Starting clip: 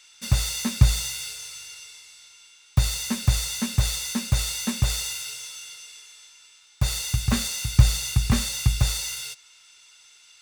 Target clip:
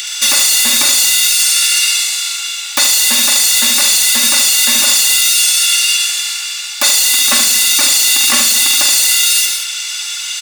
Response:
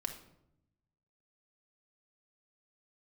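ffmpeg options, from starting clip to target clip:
-filter_complex "[0:a]aeval=exprs='if(lt(val(0),0),0.708*val(0),val(0))':c=same,highpass=f=280:w=0.5412,highpass=f=280:w=1.3066,tiltshelf=f=740:g=-8,aecho=1:1:3.5:0.82,acrossover=split=1900[s0][s1];[s1]acompressor=mode=upward:threshold=0.00562:ratio=2.5[s2];[s0][s2]amix=inputs=2:normalize=0,asoftclip=type=tanh:threshold=0.178,aecho=1:1:45|226:0.422|0.188,asplit=2[s3][s4];[1:a]atrim=start_sample=2205,highshelf=f=7700:g=10,adelay=73[s5];[s4][s5]afir=irnorm=-1:irlink=0,volume=0.562[s6];[s3][s6]amix=inputs=2:normalize=0,alimiter=level_in=13.3:limit=0.891:release=50:level=0:latency=1,volume=0.891"

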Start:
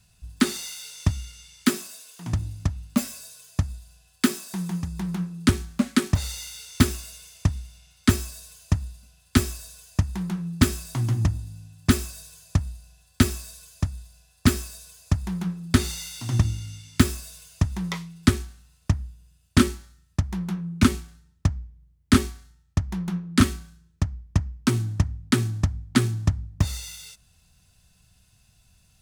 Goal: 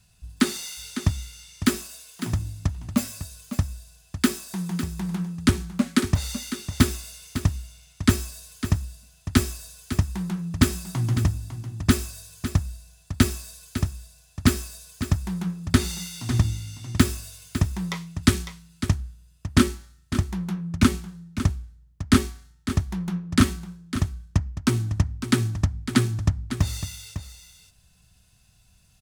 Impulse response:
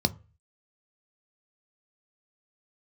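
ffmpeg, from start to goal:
-filter_complex "[0:a]aecho=1:1:553:0.282,asplit=3[s0][s1][s2];[s0]afade=t=out:st=18.21:d=0.02[s3];[s1]adynamicequalizer=threshold=0.0141:dfrequency=1900:dqfactor=0.7:tfrequency=1900:tqfactor=0.7:attack=5:release=100:ratio=0.375:range=2.5:mode=boostabove:tftype=highshelf,afade=t=in:st=18.21:d=0.02,afade=t=out:st=18.94:d=0.02[s4];[s2]afade=t=in:st=18.94:d=0.02[s5];[s3][s4][s5]amix=inputs=3:normalize=0"

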